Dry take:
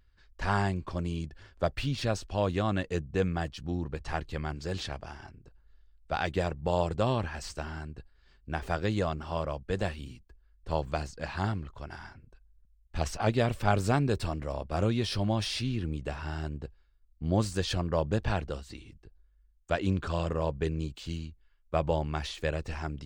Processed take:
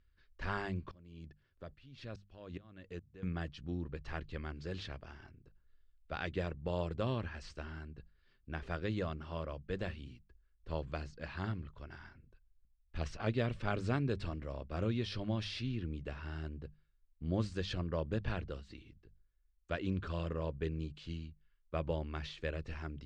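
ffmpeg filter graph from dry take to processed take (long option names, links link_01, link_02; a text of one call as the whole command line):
ffmpeg -i in.wav -filter_complex "[0:a]asettb=1/sr,asplit=3[link_01][link_02][link_03];[link_01]atrim=end=0.914[link_04];[link_02]atrim=start=0.91:end=3.23,asetpts=PTS-STARTPTS,afade=type=in:duration=0.004:curve=qsin,afade=type=out:start_time=2.316:duration=0.004:curve=qsin,acompressor=threshold=-32dB:ratio=2.5:attack=3.2:release=140:knee=1:detection=peak,aeval=exprs='val(0)*pow(10,-22*if(lt(mod(-2.4*n/s,1),2*abs(-2.4)/1000),1-mod(-2.4*n/s,1)/(2*abs(-2.4)/1000),(mod(-2.4*n/s,1)-2*abs(-2.4)/1000)/(1-2*abs(-2.4)/1000))/20)':channel_layout=same[link_05];[link_03]atrim=start=3.226[link_06];[link_04][link_05]acrossfade=duration=0.004:curve1=hsin:curve2=qsin[link_07];[link_07][link_06]acrossfade=duration=0.004:curve1=qsin:curve2=hsin,lowpass=4000,equalizer=frequency=800:width=2.1:gain=-8.5,bandreject=frequency=50:width_type=h:width=6,bandreject=frequency=100:width_type=h:width=6,bandreject=frequency=150:width_type=h:width=6,bandreject=frequency=200:width_type=h:width=6,volume=-6dB" out.wav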